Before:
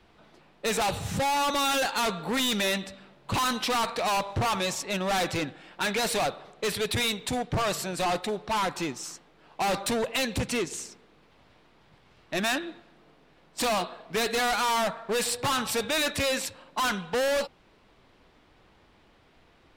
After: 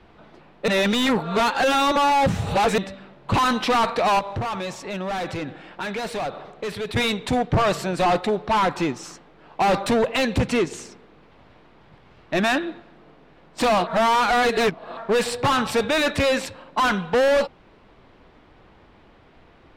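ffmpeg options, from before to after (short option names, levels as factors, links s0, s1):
-filter_complex "[0:a]asettb=1/sr,asplit=3[s0][s1][s2];[s0]atrim=end=4.194[s3];[s1]atrim=start=4.19:end=6.96,asetpts=PTS-STARTPTS,afade=t=in:d=0.004:c=qsin,afade=t=out:st=2.766:d=0.004:c=qsin,acompressor=threshold=0.0158:ratio=3:attack=3.2:release=140:knee=1:detection=peak[s4];[s2]atrim=start=6.956[s5];[s3][s4]acrossfade=d=0.004:c1=hsin:c2=qsin[s6];[s6][s5]acrossfade=d=0.004:c1=qsin:c2=hsin,asplit=5[s7][s8][s9][s10][s11];[s7]atrim=end=0.682[s12];[s8]atrim=start=0.678:end=2.782,asetpts=PTS-STARTPTS,areverse[s13];[s9]atrim=start=2.778:end=13.872[s14];[s10]atrim=start=13.868:end=14.972,asetpts=PTS-STARTPTS,areverse[s15];[s11]atrim=start=14.968[s16];[s12][s13]acrossfade=d=0.004:c1=hsin:c2=hsin[s17];[s17][s14]acrossfade=d=0.004:c1=hsin:c2=hsin[s18];[s18][s15]acrossfade=d=0.004:c1=hsin:c2=hsin[s19];[s19][s16]acrossfade=d=0.004:c1=hsin:c2=hsin,lowpass=f=2000:p=1,volume=2.66"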